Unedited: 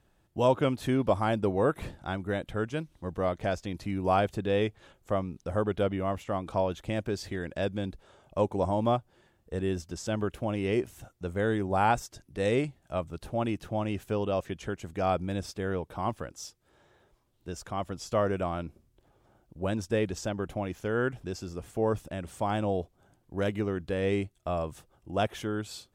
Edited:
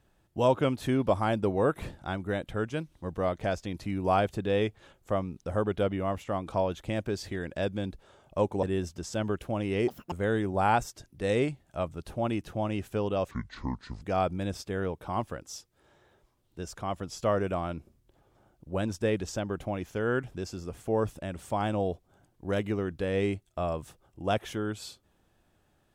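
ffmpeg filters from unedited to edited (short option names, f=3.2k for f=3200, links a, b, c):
-filter_complex "[0:a]asplit=6[a][b][c][d][e][f];[a]atrim=end=8.632[g];[b]atrim=start=9.558:end=10.814[h];[c]atrim=start=10.81:end=11.28,asetpts=PTS-STARTPTS,asetrate=86436,aresample=44100[i];[d]atrim=start=11.276:end=14.474[j];[e]atrim=start=14.47:end=14.91,asetpts=PTS-STARTPTS,asetrate=27342,aresample=44100[k];[f]atrim=start=14.906[l];[g][h]acrossfade=d=0.004:c1=hsin:c2=hsin[m];[m][i]acrossfade=d=0.004:c1=hsin:c2=hsin[n];[n][j]acrossfade=d=0.004:c1=hsin:c2=hsin[o];[o][k]acrossfade=d=0.004:c1=hsin:c2=hsin[p];[p][l]acrossfade=d=0.004:c1=hsin:c2=hsin"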